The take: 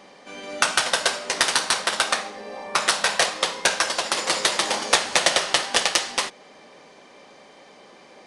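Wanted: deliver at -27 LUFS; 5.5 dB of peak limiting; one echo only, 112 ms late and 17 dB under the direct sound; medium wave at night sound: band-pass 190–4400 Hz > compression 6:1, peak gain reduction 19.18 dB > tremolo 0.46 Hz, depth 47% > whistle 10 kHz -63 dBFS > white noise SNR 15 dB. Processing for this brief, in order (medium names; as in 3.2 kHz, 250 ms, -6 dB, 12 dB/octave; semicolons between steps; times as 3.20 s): peak limiter -8.5 dBFS; band-pass 190–4400 Hz; delay 112 ms -17 dB; compression 6:1, threshold -39 dBFS; tremolo 0.46 Hz, depth 47%; whistle 10 kHz -63 dBFS; white noise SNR 15 dB; trim +16.5 dB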